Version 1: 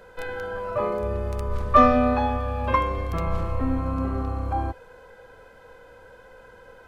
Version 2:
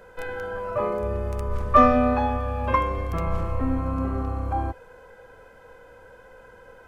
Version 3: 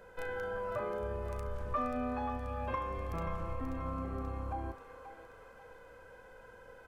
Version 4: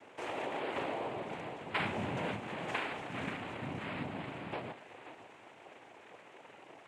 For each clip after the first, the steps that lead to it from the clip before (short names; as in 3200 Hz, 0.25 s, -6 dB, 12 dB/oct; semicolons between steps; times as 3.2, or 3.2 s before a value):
bell 4000 Hz -5 dB 0.66 oct
compressor 4:1, threshold -28 dBFS, peak gain reduction 15 dB; doubler 36 ms -12.5 dB; thinning echo 0.533 s, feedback 59%, high-pass 1200 Hz, level -6.5 dB; gain -6.5 dB
noise vocoder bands 4